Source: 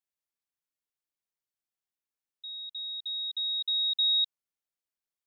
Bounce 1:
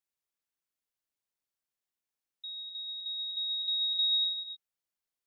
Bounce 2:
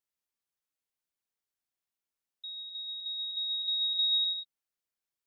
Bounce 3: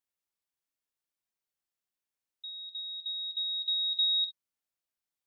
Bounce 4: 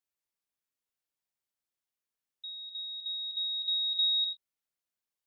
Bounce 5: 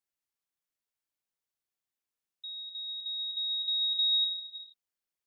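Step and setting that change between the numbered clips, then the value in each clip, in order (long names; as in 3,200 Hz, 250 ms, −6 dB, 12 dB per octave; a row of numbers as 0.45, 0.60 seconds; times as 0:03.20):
reverb whose tail is shaped and stops, gate: 330, 210, 80, 130, 500 milliseconds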